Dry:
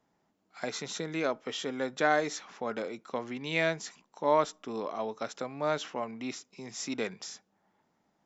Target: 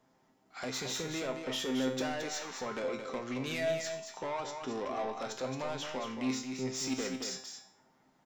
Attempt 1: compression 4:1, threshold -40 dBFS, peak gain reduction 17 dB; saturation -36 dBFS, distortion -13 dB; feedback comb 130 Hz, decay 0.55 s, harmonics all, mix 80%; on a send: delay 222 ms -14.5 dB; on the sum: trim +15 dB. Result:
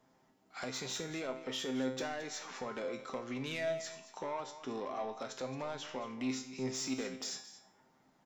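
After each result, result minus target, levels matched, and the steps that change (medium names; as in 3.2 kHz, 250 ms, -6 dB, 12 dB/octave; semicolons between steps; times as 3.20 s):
compression: peak gain reduction +5 dB; echo-to-direct -7.5 dB
change: compression 4:1, threshold -33 dBFS, peak gain reduction 11.5 dB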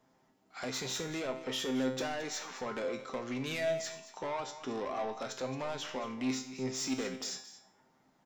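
echo-to-direct -7.5 dB
change: delay 222 ms -7 dB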